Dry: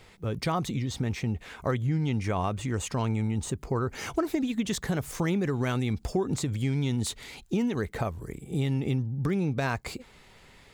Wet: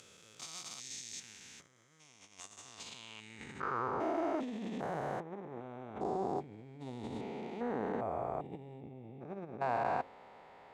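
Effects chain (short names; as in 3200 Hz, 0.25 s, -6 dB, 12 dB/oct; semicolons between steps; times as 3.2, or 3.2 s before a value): stepped spectrum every 0.4 s; low shelf 230 Hz +3.5 dB; de-hum 90.18 Hz, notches 7; negative-ratio compressor -32 dBFS, ratio -0.5; band-pass sweep 6600 Hz -> 750 Hz, 2.59–4.07; gain +7.5 dB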